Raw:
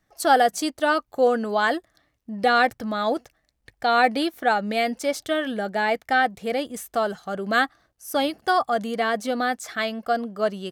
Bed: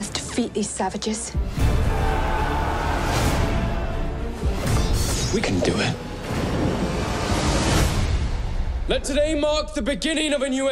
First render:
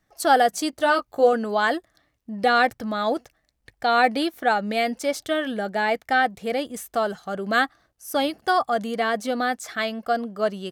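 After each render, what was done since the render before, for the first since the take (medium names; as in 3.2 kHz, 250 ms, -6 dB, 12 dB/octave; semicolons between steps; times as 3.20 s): 0.71–1.33 s: doubling 18 ms -5.5 dB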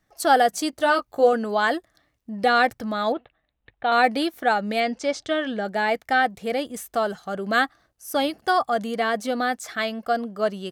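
3.12–3.92 s: rippled Chebyshev low-pass 3.9 kHz, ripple 3 dB; 4.80–5.65 s: low-pass 7 kHz 24 dB/octave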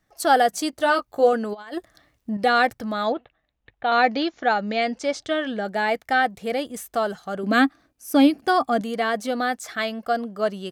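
1.53–2.37 s: compressor with a negative ratio -29 dBFS, ratio -0.5; 3.06–4.82 s: brick-wall FIR low-pass 7.3 kHz; 7.43–8.81 s: small resonant body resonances 270/2400 Hz, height 14 dB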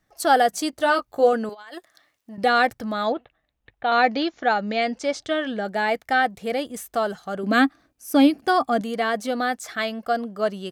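1.49–2.38 s: high-pass 960 Hz 6 dB/octave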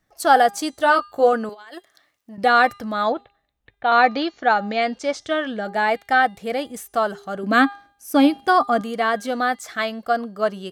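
de-hum 403.5 Hz, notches 25; dynamic bell 1.1 kHz, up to +6 dB, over -32 dBFS, Q 1.2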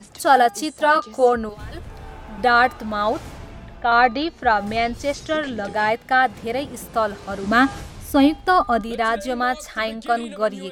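add bed -16 dB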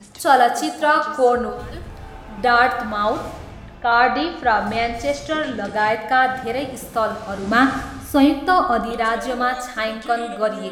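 plate-style reverb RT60 1 s, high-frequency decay 0.75×, DRR 6 dB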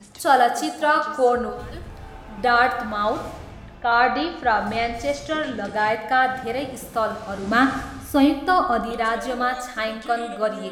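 trim -2.5 dB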